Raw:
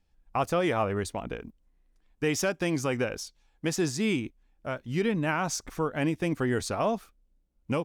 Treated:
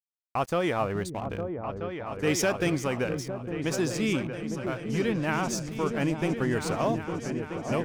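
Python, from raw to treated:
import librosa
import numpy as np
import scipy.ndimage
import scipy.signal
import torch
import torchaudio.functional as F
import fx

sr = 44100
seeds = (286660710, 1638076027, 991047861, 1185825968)

y = np.sign(x) * np.maximum(np.abs(x) - 10.0 ** (-47.0 / 20.0), 0.0)
y = fx.echo_opening(y, sr, ms=428, hz=200, octaves=2, feedback_pct=70, wet_db=-3)
y = fx.leveller(y, sr, passes=1, at=(2.27, 2.7))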